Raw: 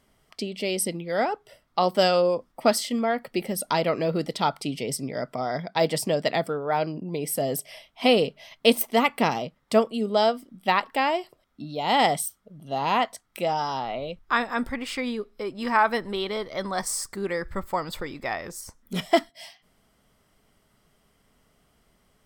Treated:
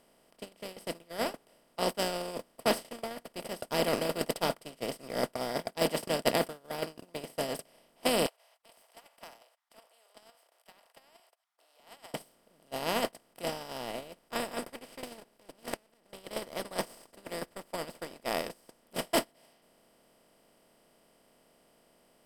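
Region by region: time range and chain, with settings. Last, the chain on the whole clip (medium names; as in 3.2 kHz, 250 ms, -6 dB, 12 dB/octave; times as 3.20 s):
8.26–12.14 s: gate -53 dBFS, range -58 dB + steep high-pass 700 Hz 72 dB/octave + compression 2.5:1, threshold -29 dBFS
15.03–16.13 s: comb filter that takes the minimum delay 0.5 ms + inverted gate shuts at -18 dBFS, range -34 dB + transient shaper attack -11 dB, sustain -7 dB
whole clip: spectral levelling over time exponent 0.2; peaking EQ 1.1 kHz -5.5 dB 2.9 oct; gate -14 dBFS, range -37 dB; trim -5.5 dB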